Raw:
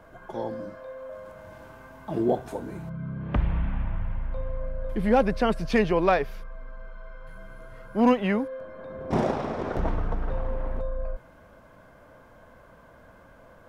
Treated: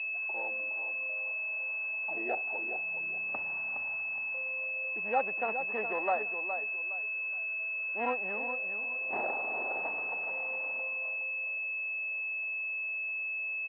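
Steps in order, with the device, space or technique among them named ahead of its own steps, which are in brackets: feedback echo 0.415 s, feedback 28%, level -8.5 dB; toy sound module (decimation joined by straight lines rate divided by 8×; pulse-width modulation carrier 2600 Hz; speaker cabinet 590–4400 Hz, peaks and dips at 790 Hz +6 dB, 1800 Hz +4 dB, 2700 Hz +7 dB); gain -7.5 dB

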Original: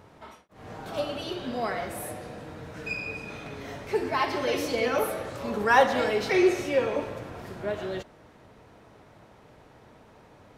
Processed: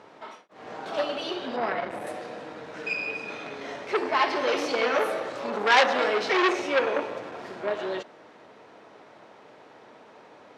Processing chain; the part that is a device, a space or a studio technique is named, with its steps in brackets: 1.56–2.07 tone controls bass +7 dB, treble -10 dB; public-address speaker with an overloaded transformer (core saturation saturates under 3300 Hz; BPF 310–5800 Hz); gain +5 dB

